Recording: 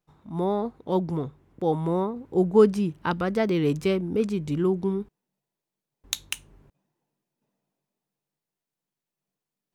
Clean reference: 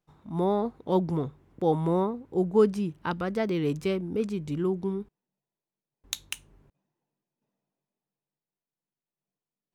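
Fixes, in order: gain correction -4 dB, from 2.16

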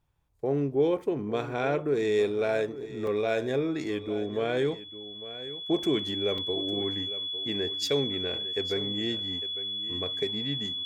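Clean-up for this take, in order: notch 3400 Hz, Q 30; interpolate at 3.07/6.38, 3 ms; inverse comb 0.853 s -14.5 dB

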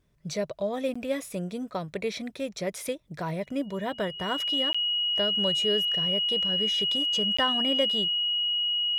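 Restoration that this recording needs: notch 2900 Hz, Q 30; interpolate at 0.94/4.73/7.37, 15 ms

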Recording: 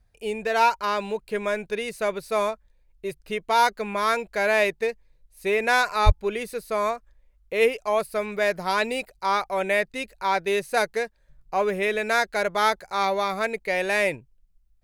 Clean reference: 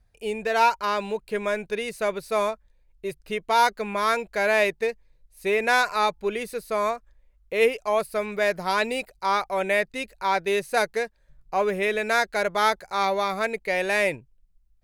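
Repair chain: de-plosive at 6.05

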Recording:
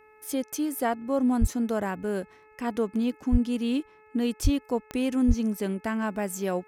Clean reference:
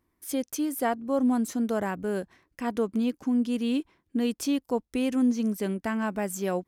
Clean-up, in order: de-click; de-hum 430 Hz, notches 6; de-plosive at 1.4/3.31/4.43/5.27

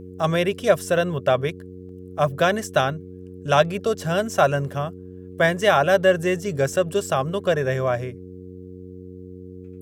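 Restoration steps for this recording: de-hum 91.8 Hz, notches 5; interpolate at 1.89/6.73, 2.1 ms

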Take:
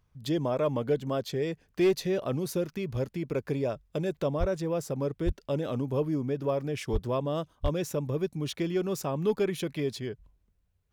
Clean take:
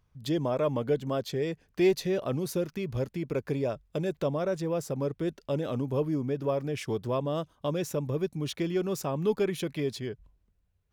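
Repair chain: clip repair -18 dBFS; de-plosive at 4.39/5.25/6.92/7.62

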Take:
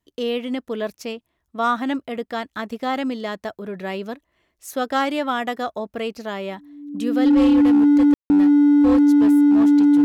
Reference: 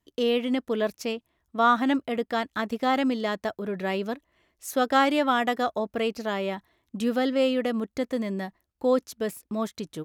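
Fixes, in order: clip repair -11 dBFS; notch 290 Hz, Q 30; room tone fill 8.14–8.3

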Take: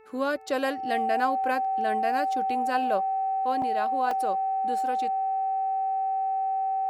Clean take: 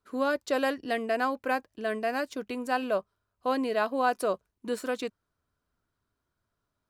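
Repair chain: de-hum 437.9 Hz, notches 6; notch 770 Hz, Q 30; interpolate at 3.62/4.11, 2.7 ms; gain correction +4.5 dB, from 3.39

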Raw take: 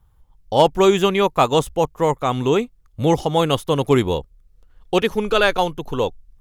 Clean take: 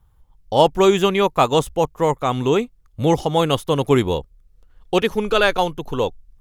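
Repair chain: clip repair -3.5 dBFS

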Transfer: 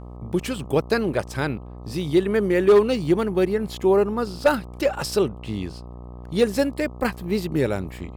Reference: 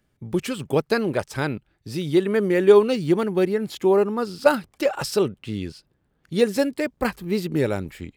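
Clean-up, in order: clip repair -9.5 dBFS; de-hum 60.6 Hz, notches 21

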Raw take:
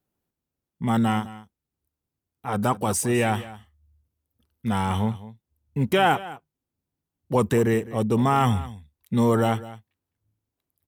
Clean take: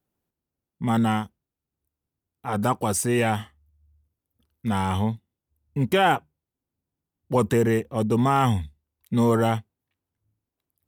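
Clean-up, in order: inverse comb 0.207 s -17 dB

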